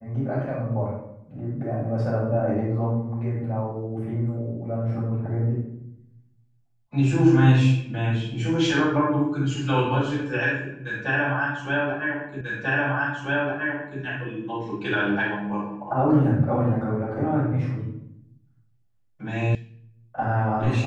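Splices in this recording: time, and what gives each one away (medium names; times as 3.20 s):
12.41 s: repeat of the last 1.59 s
19.55 s: sound stops dead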